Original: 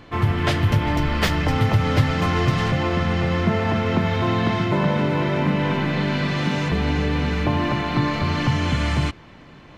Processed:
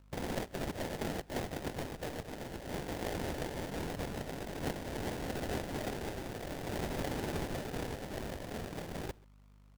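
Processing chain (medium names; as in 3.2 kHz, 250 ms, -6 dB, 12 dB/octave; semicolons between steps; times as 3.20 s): reverb removal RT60 0.53 s; differentiator; gate -49 dBFS, range -23 dB; compressor with a negative ratio -44 dBFS, ratio -0.5; hum 50 Hz, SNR 12 dB; high-order bell 2.5 kHz +11.5 dB 1.1 oct; sample-rate reducer 1.2 kHz, jitter 20%; echo from a far wall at 23 m, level -25 dB; trim -3 dB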